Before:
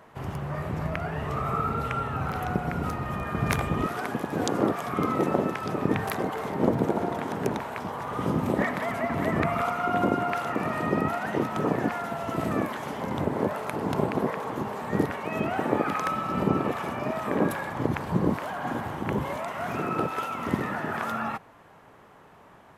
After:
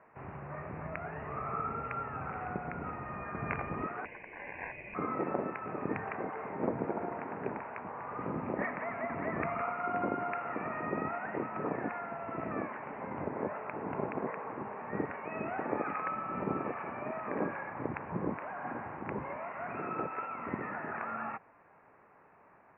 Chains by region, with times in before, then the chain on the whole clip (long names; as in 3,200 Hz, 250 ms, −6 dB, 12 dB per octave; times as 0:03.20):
0:04.05–0:04.95: resonant band-pass 1,100 Hz, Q 1.1 + ring modulation 1,300 Hz
whole clip: Butterworth low-pass 2,600 Hz 96 dB per octave; low-shelf EQ 230 Hz −8.5 dB; level −7 dB